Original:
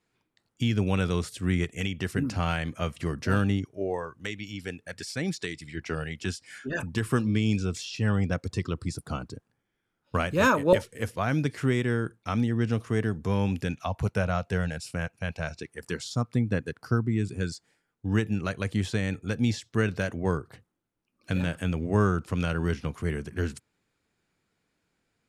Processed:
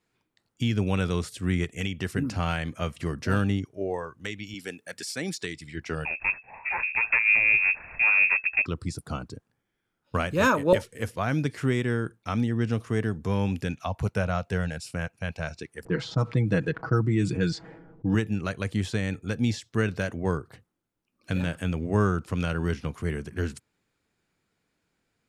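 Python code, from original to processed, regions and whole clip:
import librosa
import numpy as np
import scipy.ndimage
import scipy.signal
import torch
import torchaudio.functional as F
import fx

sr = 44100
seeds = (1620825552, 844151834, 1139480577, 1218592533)

y = fx.chain(x, sr, fx.highpass(hz=200.0, slope=12),
    fx.high_shelf(hz=7700.0, db=9.0), at=(4.54, 5.42))
y = fx.chain(y, sr, fx.lower_of_two(delay_ms=1.1),
    fx.freq_invert(carrier_hz=2600),
    fx.high_shelf(hz=2000.0, db=10.0), at=(6.05, 8.66))
y = fx.chain(y, sr, fx.env_lowpass(base_hz=490.0, full_db=-21.0),
    fx.comb(ms=6.2, depth=0.67),
    fx.env_flatten(amount_pct=50), at=(15.85, 18.15))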